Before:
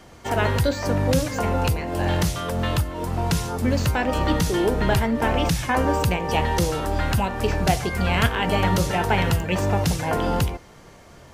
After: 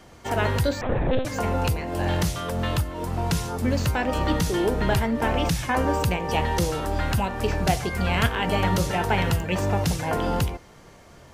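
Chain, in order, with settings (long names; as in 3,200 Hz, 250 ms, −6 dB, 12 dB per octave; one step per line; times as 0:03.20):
0:00.81–0:01.25: one-pitch LPC vocoder at 8 kHz 260 Hz
level −2 dB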